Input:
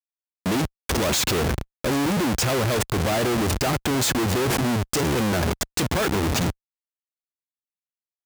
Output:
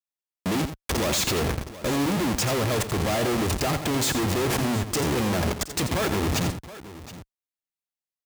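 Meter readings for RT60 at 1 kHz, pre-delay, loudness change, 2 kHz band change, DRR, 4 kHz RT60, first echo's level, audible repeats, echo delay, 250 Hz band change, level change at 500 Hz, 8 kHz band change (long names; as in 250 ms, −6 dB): no reverb audible, no reverb audible, −2.0 dB, −2.5 dB, no reverb audible, no reverb audible, −10.0 dB, 2, 86 ms, −2.0 dB, −2.0 dB, −2.0 dB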